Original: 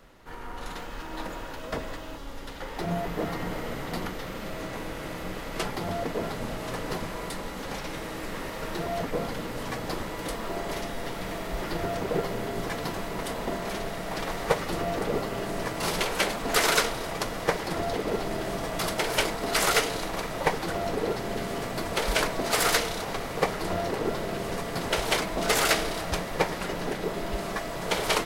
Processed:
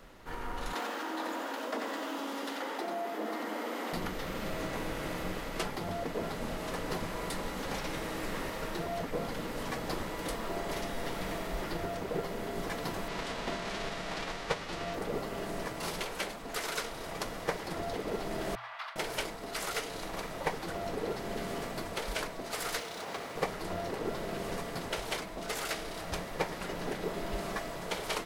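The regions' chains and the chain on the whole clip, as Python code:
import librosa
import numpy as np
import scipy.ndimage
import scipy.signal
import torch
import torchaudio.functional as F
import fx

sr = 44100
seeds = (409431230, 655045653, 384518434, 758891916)

y = fx.chain(x, sr, fx.cheby_ripple_highpass(hz=210.0, ripple_db=3),
    fx.echo_single(ms=90, db=-5.5),
    fx.env_flatten(amount_pct=50), at=(0.73, 3.93))
y = fx.envelope_flatten(y, sr, power=0.6, at=(13.07, 14.93), fade=0.02)
y = fx.lowpass(y, sr, hz=4900.0, slope=12, at=(13.07, 14.93), fade=0.02)
y = fx.chain(y, sr, fx.cheby2_highpass(hz=360.0, order=4, stop_db=50),
    fx.air_absorb(metres=350.0), at=(18.55, 18.96))
y = fx.chain(y, sr, fx.median_filter(points=3),
    fx.highpass(hz=280.0, slope=6), at=(22.79, 23.36))
y = fx.rider(y, sr, range_db=10, speed_s=0.5)
y = fx.hum_notches(y, sr, base_hz=60, count=2)
y = F.gain(torch.from_numpy(y), -7.0).numpy()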